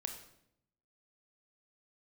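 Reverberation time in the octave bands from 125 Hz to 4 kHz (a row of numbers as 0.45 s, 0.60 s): 1.1 s, 1.0 s, 0.80 s, 0.65 s, 0.65 s, 0.60 s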